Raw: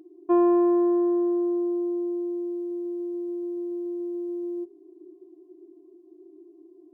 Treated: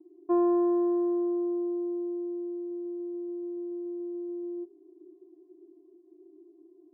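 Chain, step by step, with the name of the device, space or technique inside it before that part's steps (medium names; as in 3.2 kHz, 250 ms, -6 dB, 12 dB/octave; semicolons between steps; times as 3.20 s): hearing-loss simulation (low-pass 1.5 kHz 12 dB/octave; expander -51 dBFS); trim -4.5 dB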